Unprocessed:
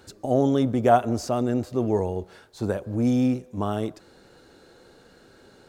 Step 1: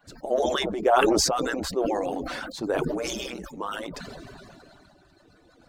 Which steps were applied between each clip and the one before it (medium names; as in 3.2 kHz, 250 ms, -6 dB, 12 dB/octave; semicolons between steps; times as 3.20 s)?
harmonic-percussive separation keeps percussive; treble shelf 5.5 kHz -8 dB; decay stretcher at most 20 dB/s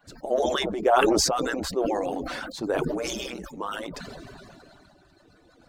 no audible change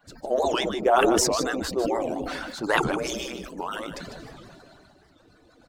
time-frequency box 2.64–2.90 s, 770–11000 Hz +11 dB; delay 150 ms -9.5 dB; warped record 78 rpm, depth 250 cents